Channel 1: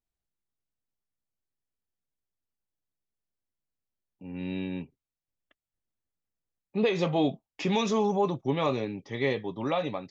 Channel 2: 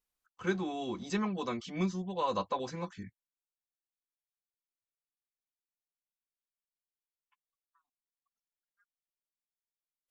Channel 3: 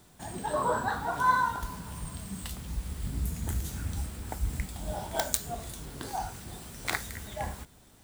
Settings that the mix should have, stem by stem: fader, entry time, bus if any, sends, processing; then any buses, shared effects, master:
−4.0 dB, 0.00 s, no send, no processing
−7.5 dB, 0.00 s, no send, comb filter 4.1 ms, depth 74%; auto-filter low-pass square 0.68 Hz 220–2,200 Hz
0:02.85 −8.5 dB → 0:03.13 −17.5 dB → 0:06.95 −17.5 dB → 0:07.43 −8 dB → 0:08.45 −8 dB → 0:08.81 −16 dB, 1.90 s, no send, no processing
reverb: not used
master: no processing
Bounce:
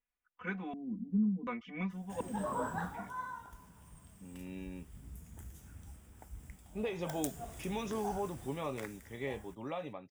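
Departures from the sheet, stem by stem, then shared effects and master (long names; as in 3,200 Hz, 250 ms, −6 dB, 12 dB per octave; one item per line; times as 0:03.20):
stem 1 −4.0 dB → −11.5 dB
master: extra parametric band 4,200 Hz −14 dB 0.26 octaves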